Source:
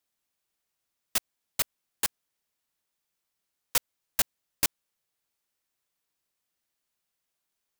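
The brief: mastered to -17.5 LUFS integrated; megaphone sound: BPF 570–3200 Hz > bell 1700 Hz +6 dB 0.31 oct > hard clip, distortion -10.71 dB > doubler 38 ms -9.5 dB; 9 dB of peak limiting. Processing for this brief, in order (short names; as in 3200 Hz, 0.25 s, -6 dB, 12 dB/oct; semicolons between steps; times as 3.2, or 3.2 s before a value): limiter -18 dBFS; BPF 570–3200 Hz; bell 1700 Hz +6 dB 0.31 oct; hard clip -34 dBFS; doubler 38 ms -9.5 dB; gain +29 dB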